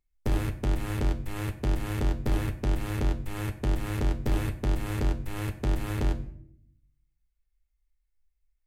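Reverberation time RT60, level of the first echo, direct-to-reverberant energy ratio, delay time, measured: 0.65 s, none, 6.5 dB, none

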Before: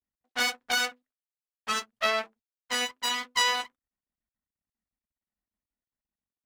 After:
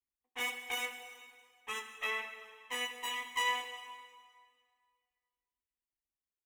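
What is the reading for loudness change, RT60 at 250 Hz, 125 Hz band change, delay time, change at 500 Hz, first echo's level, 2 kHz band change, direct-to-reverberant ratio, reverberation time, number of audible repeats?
-9.0 dB, 2.0 s, n/a, 0.39 s, -11.5 dB, -24.0 dB, -7.0 dB, 6.5 dB, 2.0 s, 1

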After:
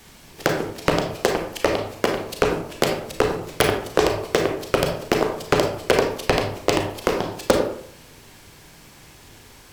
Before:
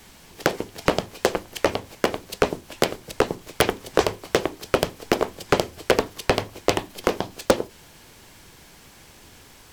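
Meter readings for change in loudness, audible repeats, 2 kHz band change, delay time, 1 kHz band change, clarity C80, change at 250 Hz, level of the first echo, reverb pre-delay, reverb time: +2.0 dB, none, +2.0 dB, none, +2.0 dB, 9.0 dB, +2.5 dB, none, 31 ms, 0.60 s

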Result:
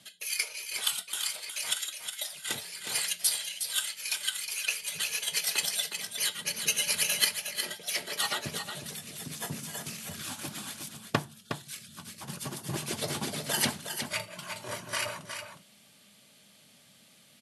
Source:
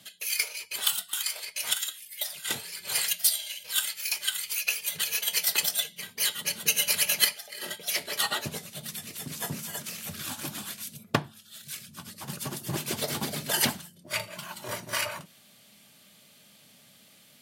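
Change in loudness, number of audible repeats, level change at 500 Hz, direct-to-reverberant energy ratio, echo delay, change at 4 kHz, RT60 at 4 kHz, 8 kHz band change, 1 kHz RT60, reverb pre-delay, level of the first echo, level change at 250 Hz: -3.0 dB, 1, -1.5 dB, none, 0.363 s, -2.0 dB, none, -2.0 dB, none, none, -7.5 dB, -1.5 dB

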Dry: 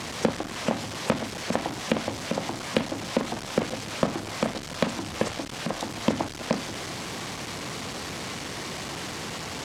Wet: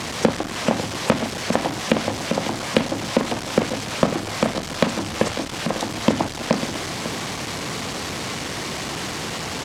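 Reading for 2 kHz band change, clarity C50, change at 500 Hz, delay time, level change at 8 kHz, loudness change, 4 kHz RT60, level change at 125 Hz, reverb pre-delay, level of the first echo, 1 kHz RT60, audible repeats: +6.0 dB, none, +6.5 dB, 0.548 s, +6.0 dB, +6.5 dB, none, +6.5 dB, none, -12.5 dB, none, 1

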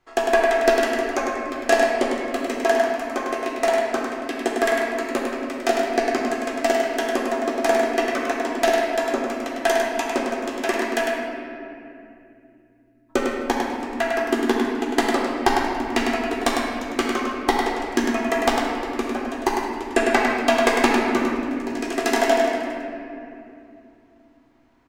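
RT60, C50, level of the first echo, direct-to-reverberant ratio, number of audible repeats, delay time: 2.7 s, -1.5 dB, -4.5 dB, -3.0 dB, 1, 0.102 s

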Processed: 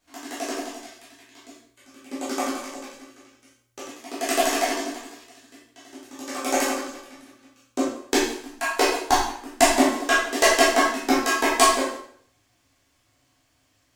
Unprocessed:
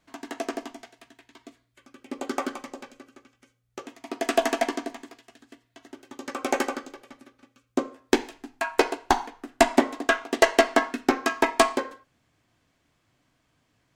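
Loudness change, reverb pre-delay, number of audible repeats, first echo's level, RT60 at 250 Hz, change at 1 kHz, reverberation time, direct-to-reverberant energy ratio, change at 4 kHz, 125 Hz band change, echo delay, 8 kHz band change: +3.0 dB, 6 ms, none, none, 0.60 s, +3.5 dB, 0.60 s, -7.5 dB, +6.5 dB, n/a, none, +9.5 dB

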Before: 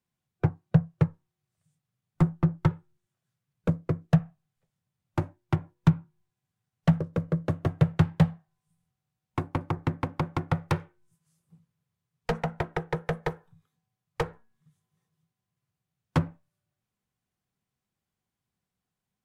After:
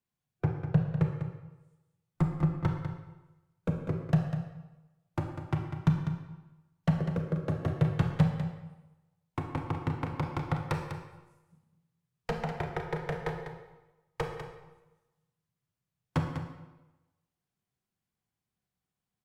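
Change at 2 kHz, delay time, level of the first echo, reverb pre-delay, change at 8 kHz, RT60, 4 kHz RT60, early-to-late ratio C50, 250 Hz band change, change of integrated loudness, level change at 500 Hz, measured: -3.0 dB, 0.198 s, -9.0 dB, 26 ms, n/a, 1.0 s, 0.85 s, 4.0 dB, -3.5 dB, -4.0 dB, -3.0 dB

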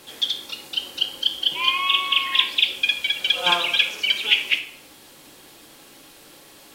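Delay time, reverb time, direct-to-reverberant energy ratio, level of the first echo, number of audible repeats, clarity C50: none, 0.55 s, 5.0 dB, none, none, 12.0 dB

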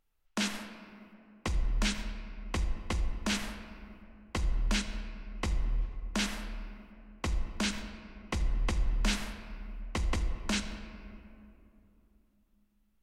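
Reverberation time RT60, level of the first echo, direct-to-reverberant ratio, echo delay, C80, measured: 2.9 s, none, 7.5 dB, none, 9.5 dB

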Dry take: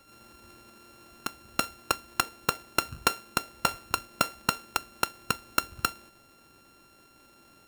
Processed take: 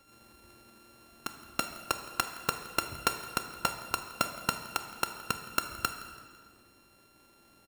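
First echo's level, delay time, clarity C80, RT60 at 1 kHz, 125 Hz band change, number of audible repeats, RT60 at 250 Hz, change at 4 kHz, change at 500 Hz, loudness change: -20.0 dB, 0.167 s, 9.5 dB, 1.8 s, -3.0 dB, 2, 2.3 s, -3.5 dB, -3.0 dB, -3.5 dB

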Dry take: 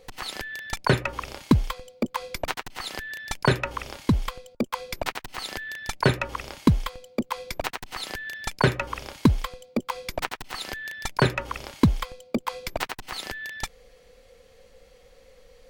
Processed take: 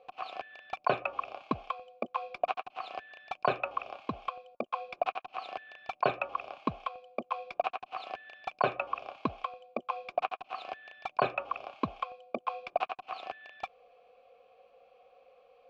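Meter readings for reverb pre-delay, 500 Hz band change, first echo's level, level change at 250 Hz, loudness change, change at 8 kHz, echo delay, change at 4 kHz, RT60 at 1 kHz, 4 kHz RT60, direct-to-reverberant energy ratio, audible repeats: none, -4.5 dB, none, -16.5 dB, -8.0 dB, under -30 dB, none, -14.0 dB, none, none, none, none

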